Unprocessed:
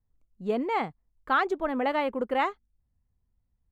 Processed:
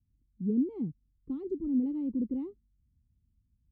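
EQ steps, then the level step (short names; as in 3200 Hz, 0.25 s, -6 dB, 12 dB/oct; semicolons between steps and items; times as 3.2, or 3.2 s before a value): HPF 43 Hz; inverse Chebyshev low-pass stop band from 600 Hz, stop band 40 dB; +5.5 dB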